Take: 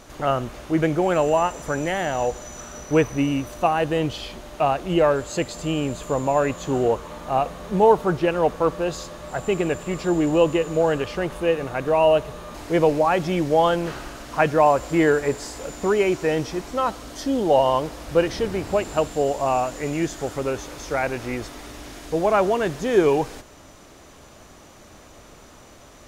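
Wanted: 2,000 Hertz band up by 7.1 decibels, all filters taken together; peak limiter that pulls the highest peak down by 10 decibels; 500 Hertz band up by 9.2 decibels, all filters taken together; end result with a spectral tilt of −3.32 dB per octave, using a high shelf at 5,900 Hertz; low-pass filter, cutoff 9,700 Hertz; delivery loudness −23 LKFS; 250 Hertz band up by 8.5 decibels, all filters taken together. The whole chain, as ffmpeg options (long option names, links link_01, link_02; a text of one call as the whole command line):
ffmpeg -i in.wav -af "lowpass=9700,equalizer=frequency=250:width_type=o:gain=8,equalizer=frequency=500:width_type=o:gain=8.5,equalizer=frequency=2000:width_type=o:gain=8,highshelf=frequency=5900:gain=5,volume=-6dB,alimiter=limit=-12.5dB:level=0:latency=1" out.wav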